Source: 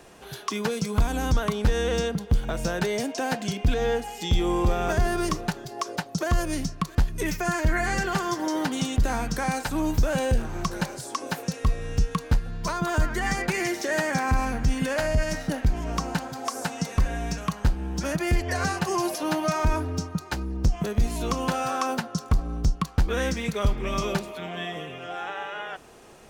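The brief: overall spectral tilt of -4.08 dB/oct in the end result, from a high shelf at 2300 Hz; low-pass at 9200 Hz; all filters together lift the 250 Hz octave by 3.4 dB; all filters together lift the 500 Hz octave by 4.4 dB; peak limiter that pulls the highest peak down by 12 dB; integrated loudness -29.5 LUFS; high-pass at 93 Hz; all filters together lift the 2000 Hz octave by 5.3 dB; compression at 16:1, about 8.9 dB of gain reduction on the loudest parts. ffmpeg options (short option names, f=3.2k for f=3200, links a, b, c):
-af "highpass=93,lowpass=9.2k,equalizer=f=250:t=o:g=3.5,equalizer=f=500:t=o:g=4,equalizer=f=2k:t=o:g=3.5,highshelf=f=2.3k:g=6,acompressor=threshold=-27dB:ratio=16,volume=5dB,alimiter=limit=-20dB:level=0:latency=1"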